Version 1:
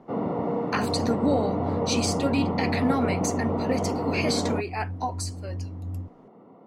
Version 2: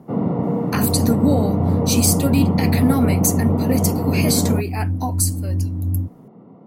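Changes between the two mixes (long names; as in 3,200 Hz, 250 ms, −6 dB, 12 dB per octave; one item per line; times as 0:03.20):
speech: remove high-frequency loss of the air 130 metres
second sound: remove Chebyshev low-pass with heavy ripple 560 Hz, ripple 6 dB
master: add parametric band 140 Hz +13 dB 2 octaves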